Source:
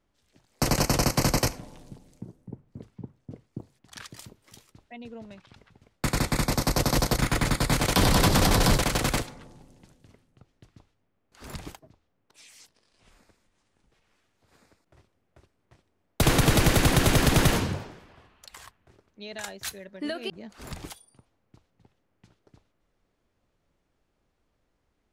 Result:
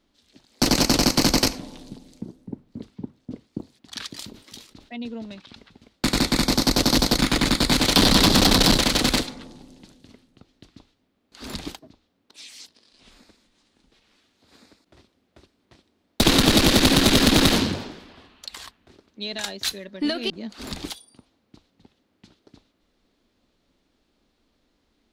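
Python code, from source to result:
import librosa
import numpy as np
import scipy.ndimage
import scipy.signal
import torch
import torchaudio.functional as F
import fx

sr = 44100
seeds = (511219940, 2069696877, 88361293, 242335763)

y = fx.diode_clip(x, sr, knee_db=-24.5)
y = fx.graphic_eq(y, sr, hz=(125, 250, 4000), db=(-6, 9, 11))
y = fx.sustainer(y, sr, db_per_s=120.0, at=(4.18, 4.99))
y = y * 10.0 ** (3.5 / 20.0)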